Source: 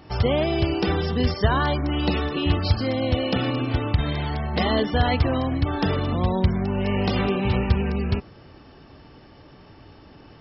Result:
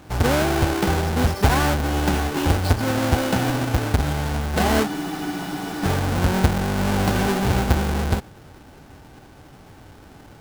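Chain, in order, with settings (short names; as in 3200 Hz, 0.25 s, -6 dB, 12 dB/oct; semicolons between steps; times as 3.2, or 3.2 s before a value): half-waves squared off; small resonant body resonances 800/1500 Hz, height 8 dB, ringing for 35 ms; spectral freeze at 4.89, 0.95 s; gain -3 dB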